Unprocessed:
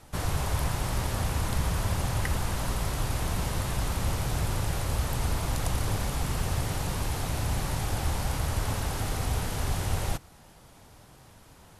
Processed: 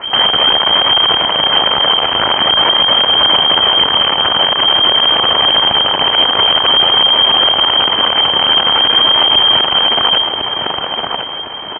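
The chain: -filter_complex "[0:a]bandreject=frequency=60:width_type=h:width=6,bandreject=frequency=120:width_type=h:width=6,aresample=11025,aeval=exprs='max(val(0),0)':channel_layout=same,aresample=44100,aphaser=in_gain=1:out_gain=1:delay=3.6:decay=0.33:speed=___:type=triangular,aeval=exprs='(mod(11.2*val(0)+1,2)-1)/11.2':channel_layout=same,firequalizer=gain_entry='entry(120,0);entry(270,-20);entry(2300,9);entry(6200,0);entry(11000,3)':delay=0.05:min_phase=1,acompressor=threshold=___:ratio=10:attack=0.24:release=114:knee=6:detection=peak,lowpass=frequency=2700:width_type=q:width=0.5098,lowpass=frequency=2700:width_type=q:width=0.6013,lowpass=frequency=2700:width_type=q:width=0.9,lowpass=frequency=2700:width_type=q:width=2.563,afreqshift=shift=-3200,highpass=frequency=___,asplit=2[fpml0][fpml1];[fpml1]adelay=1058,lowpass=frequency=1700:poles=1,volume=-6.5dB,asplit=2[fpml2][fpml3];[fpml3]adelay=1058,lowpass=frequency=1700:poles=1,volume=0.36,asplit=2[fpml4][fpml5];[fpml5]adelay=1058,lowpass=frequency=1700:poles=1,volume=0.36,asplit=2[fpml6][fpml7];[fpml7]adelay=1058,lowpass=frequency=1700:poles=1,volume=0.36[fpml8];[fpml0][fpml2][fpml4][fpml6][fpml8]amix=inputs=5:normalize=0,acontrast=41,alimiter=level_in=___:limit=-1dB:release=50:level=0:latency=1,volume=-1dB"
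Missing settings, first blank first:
0.49, -29dB, 59, 27.5dB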